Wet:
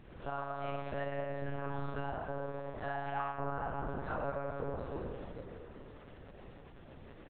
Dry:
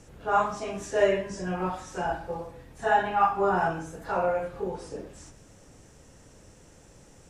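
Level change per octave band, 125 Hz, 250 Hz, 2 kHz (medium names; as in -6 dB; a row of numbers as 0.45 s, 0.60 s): -2.5 dB, -8.5 dB, -11.5 dB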